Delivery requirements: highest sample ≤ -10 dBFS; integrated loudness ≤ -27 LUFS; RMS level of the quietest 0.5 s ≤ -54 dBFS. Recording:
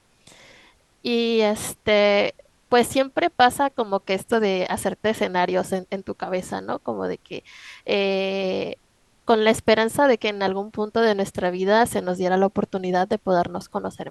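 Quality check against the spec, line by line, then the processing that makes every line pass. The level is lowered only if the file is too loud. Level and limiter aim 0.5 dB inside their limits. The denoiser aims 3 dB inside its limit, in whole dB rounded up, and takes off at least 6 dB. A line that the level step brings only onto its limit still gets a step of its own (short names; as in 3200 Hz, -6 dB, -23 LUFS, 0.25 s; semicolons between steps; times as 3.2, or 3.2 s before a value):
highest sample -3.5 dBFS: fail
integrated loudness -22.0 LUFS: fail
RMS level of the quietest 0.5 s -61 dBFS: OK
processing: gain -5.5 dB; limiter -10.5 dBFS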